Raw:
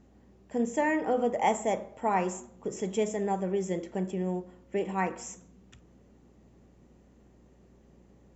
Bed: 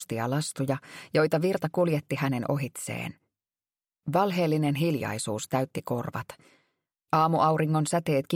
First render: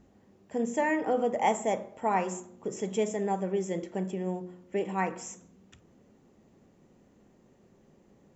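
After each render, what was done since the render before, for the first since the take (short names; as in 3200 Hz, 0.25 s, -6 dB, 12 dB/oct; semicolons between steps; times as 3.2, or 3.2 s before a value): de-hum 60 Hz, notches 6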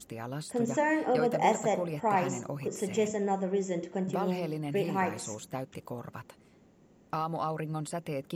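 add bed -10 dB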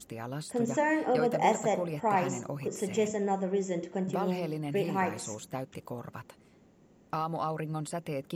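nothing audible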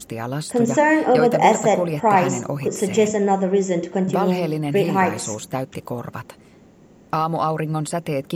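gain +11.5 dB; limiter -3 dBFS, peak gain reduction 2 dB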